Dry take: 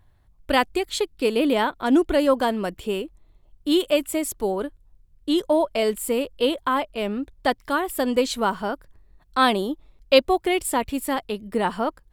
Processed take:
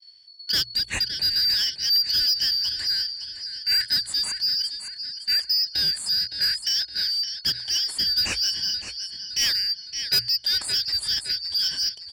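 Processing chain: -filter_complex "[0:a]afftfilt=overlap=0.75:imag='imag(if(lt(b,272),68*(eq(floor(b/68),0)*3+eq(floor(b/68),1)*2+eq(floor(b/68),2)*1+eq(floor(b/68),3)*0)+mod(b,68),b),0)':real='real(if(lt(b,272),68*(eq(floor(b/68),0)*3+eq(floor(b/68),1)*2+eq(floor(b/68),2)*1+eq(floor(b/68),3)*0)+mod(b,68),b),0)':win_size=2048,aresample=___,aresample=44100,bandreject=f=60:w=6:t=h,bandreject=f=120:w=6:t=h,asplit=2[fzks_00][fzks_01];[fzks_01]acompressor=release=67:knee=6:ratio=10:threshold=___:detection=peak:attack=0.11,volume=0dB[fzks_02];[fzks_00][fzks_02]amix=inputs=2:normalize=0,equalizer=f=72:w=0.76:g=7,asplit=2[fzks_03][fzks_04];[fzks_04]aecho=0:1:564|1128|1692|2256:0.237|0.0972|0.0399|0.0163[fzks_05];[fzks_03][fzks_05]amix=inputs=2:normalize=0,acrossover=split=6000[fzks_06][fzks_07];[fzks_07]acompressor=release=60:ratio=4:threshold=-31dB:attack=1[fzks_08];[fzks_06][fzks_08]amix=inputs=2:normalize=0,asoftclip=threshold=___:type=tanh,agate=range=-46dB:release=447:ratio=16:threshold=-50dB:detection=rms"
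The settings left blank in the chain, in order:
22050, -31dB, -16dB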